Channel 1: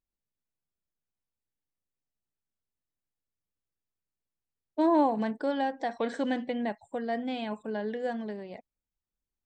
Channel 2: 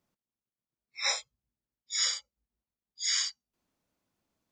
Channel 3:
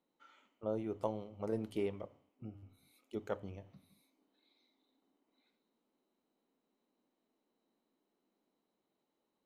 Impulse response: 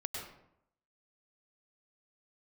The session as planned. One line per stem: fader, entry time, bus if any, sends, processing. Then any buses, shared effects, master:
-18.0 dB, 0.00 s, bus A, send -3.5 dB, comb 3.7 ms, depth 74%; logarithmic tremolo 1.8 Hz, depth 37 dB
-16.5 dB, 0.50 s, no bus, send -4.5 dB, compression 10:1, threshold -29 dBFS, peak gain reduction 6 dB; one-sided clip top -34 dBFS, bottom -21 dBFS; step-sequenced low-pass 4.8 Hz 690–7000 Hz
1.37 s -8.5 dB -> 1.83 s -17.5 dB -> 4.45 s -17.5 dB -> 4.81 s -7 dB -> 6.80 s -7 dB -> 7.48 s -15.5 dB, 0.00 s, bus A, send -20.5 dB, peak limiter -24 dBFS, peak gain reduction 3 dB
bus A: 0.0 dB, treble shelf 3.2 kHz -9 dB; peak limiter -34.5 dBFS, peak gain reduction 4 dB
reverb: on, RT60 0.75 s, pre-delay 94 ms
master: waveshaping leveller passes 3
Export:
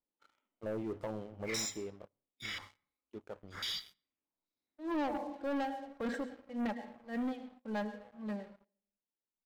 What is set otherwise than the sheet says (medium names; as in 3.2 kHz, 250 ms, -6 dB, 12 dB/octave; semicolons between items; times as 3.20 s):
stem 1 -18.0 dB -> -11.0 dB; reverb return -9.0 dB